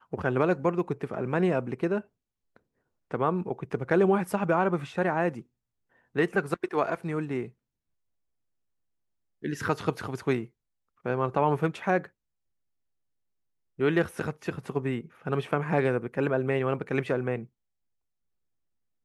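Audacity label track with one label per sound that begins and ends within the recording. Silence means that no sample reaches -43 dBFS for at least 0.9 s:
9.430000	12.060000	sound
13.790000	17.450000	sound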